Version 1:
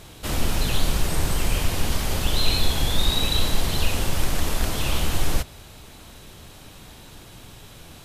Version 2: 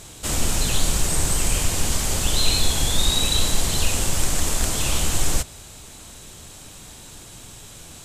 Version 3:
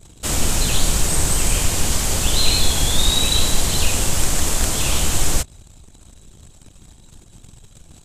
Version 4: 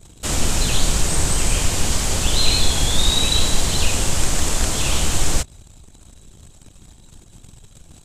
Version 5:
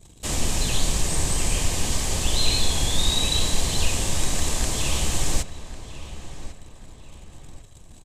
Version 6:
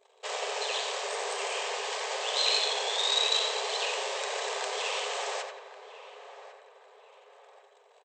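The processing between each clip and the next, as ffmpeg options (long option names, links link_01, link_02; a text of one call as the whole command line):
ffmpeg -i in.wav -af "equalizer=frequency=7600:width_type=o:width=0.83:gain=12.5" out.wav
ffmpeg -i in.wav -af "anlmdn=0.631,volume=3dB" out.wav
ffmpeg -i in.wav -filter_complex "[0:a]acrossover=split=9600[link_01][link_02];[link_02]acompressor=threshold=-39dB:ratio=4:attack=1:release=60[link_03];[link_01][link_03]amix=inputs=2:normalize=0" out.wav
ffmpeg -i in.wav -filter_complex "[0:a]bandreject=frequency=1400:width=6.3,asplit=2[link_01][link_02];[link_02]adelay=1100,lowpass=frequency=2900:poles=1,volume=-13dB,asplit=2[link_03][link_04];[link_04]adelay=1100,lowpass=frequency=2900:poles=1,volume=0.42,asplit=2[link_05][link_06];[link_06]adelay=1100,lowpass=frequency=2900:poles=1,volume=0.42,asplit=2[link_07][link_08];[link_08]adelay=1100,lowpass=frequency=2900:poles=1,volume=0.42[link_09];[link_01][link_03][link_05][link_07][link_09]amix=inputs=5:normalize=0,volume=-4.5dB" out.wav
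ffmpeg -i in.wav -filter_complex "[0:a]adynamicsmooth=sensitivity=2:basefreq=2500,asplit=2[link_01][link_02];[link_02]adelay=88,lowpass=frequency=2800:poles=1,volume=-4dB,asplit=2[link_03][link_04];[link_04]adelay=88,lowpass=frequency=2800:poles=1,volume=0.47,asplit=2[link_05][link_06];[link_06]adelay=88,lowpass=frequency=2800:poles=1,volume=0.47,asplit=2[link_07][link_08];[link_08]adelay=88,lowpass=frequency=2800:poles=1,volume=0.47,asplit=2[link_09][link_10];[link_10]adelay=88,lowpass=frequency=2800:poles=1,volume=0.47,asplit=2[link_11][link_12];[link_12]adelay=88,lowpass=frequency=2800:poles=1,volume=0.47[link_13];[link_01][link_03][link_05][link_07][link_09][link_11][link_13]amix=inputs=7:normalize=0,afftfilt=real='re*between(b*sr/4096,390,8600)':imag='im*between(b*sr/4096,390,8600)':win_size=4096:overlap=0.75" out.wav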